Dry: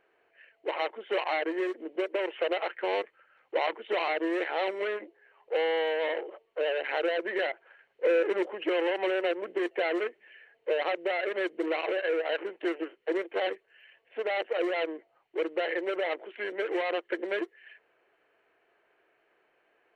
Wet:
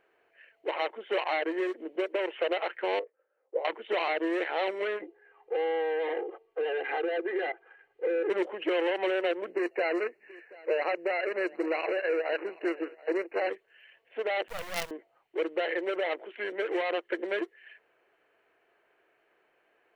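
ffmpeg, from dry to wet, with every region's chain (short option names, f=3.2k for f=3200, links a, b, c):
-filter_complex "[0:a]asettb=1/sr,asplit=3[a][b][c];[a]atrim=end=2.994[d];[b]atrim=start=2.99:end=3.65,asetpts=PTS-STARTPTS,afade=t=in:d=0.004:c=qsin,afade=t=out:st=0.656:d=0.004:c=qsin,bandpass=f=490:t=q:w=4.1,asplit=2[e][f];[f]adelay=19,volume=-5.5dB[g];[e][g]amix=inputs=2:normalize=0,atrim=end_sample=29106[h];[c]atrim=start=3.646[i];[d][h]acrossfade=d=0.004:c1=hsin:c2=qsin[j];[j][i]acrossfade=d=0.004:c1=qsin:c2=hsin,asettb=1/sr,asplit=3[k][l][m];[k]atrim=end=5.024[n];[l]atrim=start=5.02:end=8.3,asetpts=PTS-STARTPTS,afade=t=in:d=0.004:c=qsin,afade=t=out:st=3.276:d=0.004:c=qsin,lowpass=f=1.5k:p=1,aecho=1:1:2.5:0.97,atrim=end_sample=144648,acompressor=threshold=-27dB:ratio=3:attack=3.2:release=140:knee=1:detection=peak[o];[m]atrim=start=8.296[p];[n][o]acrossfade=d=0.004:c1=hsin:c2=qsin[q];[q][p]acrossfade=d=0.004:c1=qsin:c2=hsin,asettb=1/sr,asplit=3[r][s][t];[r]atrim=end=9.504[u];[s]atrim=start=9.5:end=13.5,asetpts=PTS-STARTPTS,afade=t=in:d=0.004:c=qsin,afade=t=out:st=3.996:d=0.004:c=qsin,asuperstop=centerf=3400:order=20:qfactor=3.2,aecho=1:1:731:0.0841,atrim=end_sample=176400[v];[t]atrim=start=13.496[w];[u][v]acrossfade=d=0.004:c1=hsin:c2=qsin[x];[x][w]acrossfade=d=0.004:c1=qsin:c2=hsin,asettb=1/sr,asplit=3[y][z][aa];[y]atrim=end=14.484[ab];[z]atrim=start=14.48:end=14.91,asetpts=PTS-STARTPTS,afade=t=in:d=0.004:c=qsin,afade=t=out:st=0.426:d=0.004:c=qsin,highpass=f=600:w=0.5412,highpass=f=600:w=1.3066,acrusher=bits=5:dc=4:mix=0:aa=0.000001[ac];[aa]atrim=start=14.906[ad];[ab][ac]acrossfade=d=0.004:c1=hsin:c2=qsin[ae];[ae][ad]acrossfade=d=0.004:c1=qsin:c2=hsin"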